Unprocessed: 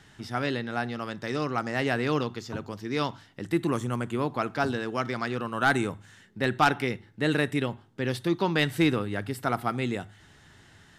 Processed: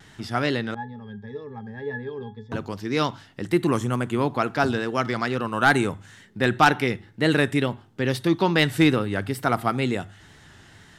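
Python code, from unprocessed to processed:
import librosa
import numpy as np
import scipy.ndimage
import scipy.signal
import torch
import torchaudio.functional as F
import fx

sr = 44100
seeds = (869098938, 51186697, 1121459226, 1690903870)

y = fx.octave_resonator(x, sr, note='G#', decay_s=0.13, at=(0.74, 2.52))
y = fx.wow_flutter(y, sr, seeds[0], rate_hz=2.1, depth_cents=59.0)
y = F.gain(torch.from_numpy(y), 5.0).numpy()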